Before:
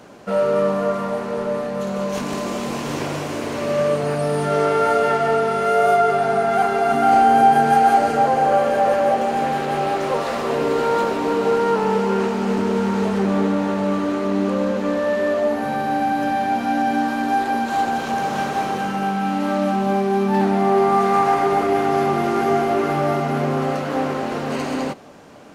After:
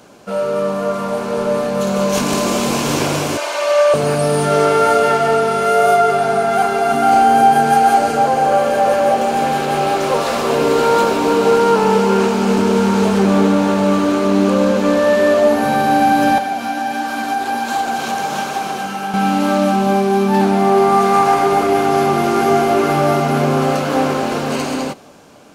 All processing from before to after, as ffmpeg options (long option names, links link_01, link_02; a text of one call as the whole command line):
ffmpeg -i in.wav -filter_complex "[0:a]asettb=1/sr,asplit=3[link_01][link_02][link_03];[link_01]atrim=end=3.374[link_04];[link_02]atrim=start=3.37:end=3.94,asetpts=PTS-STARTPTS,afade=type=in:duration=0.004:curve=qsin,afade=type=out:start_time=0.566:duration=0.004:curve=qsin,highpass=frequency=580:width=0.5412,highpass=frequency=580:width=1.3066,highshelf=frequency=8400:gain=-10.5,aecho=1:1:3.3:0.74,atrim=end_sample=25137[link_05];[link_03]atrim=start=3.936[link_06];[link_04][link_05]acrossfade=duration=0.004:curve1=hsin:curve2=qsin[link_07];[link_07][link_06]acrossfade=duration=0.004:curve1=qsin:curve2=hsin,asettb=1/sr,asplit=3[link_08][link_09][link_10];[link_08]atrim=end=16.384[link_11];[link_09]atrim=start=16.38:end=19.14,asetpts=PTS-STARTPTS,afade=type=in:duration=0.004:curve=qsin,afade=type=out:start_time=2.756:duration=0.004:curve=qsin,acrossover=split=110|650[link_12][link_13][link_14];[link_12]acompressor=threshold=-59dB:ratio=4[link_15];[link_13]acompressor=threshold=-31dB:ratio=4[link_16];[link_14]acompressor=threshold=-24dB:ratio=4[link_17];[link_15][link_16][link_17]amix=inputs=3:normalize=0,flanger=delay=1.3:depth=9.8:regen=65:speed=1.4:shape=triangular[link_18];[link_10]atrim=start=19.136[link_19];[link_11][link_18]acrossfade=duration=0.004:curve1=hsin:curve2=qsin[link_20];[link_20][link_19]acrossfade=duration=0.004:curve1=qsin:curve2=hsin,highshelf=frequency=3900:gain=7.5,bandreject=frequency=1900:width=11,dynaudnorm=framelen=210:gausssize=11:maxgain=11.5dB,volume=-1dB" out.wav